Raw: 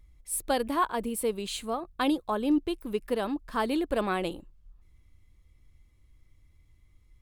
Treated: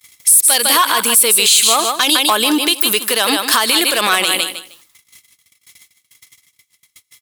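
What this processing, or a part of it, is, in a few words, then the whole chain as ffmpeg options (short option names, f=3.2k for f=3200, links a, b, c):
mastering chain: -af "agate=range=-32dB:threshold=-54dB:ratio=16:detection=peak,highpass=53,highpass=240,equalizer=f=310:t=o:w=1.6:g=-3,highshelf=f=3.1k:g=10.5,aecho=1:1:154|308|462:0.282|0.0535|0.0102,acompressor=threshold=-30dB:ratio=2,asoftclip=type=tanh:threshold=-22.5dB,tiltshelf=f=1.1k:g=-9.5,alimiter=level_in=26dB:limit=-1dB:release=50:level=0:latency=1,volume=-1dB"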